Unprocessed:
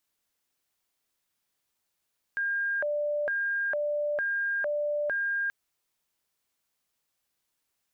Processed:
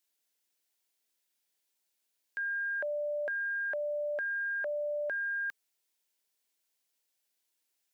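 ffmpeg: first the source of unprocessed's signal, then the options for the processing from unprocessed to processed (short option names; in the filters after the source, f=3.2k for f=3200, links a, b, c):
-f lavfi -i "aevalsrc='0.0501*sin(2*PI*(1100*t+510/1.1*(0.5-abs(mod(1.1*t,1)-0.5))))':d=3.13:s=44100"
-af "highpass=320,equalizer=f=1k:w=0.56:g=-6,bandreject=f=1.2k:w=8.1"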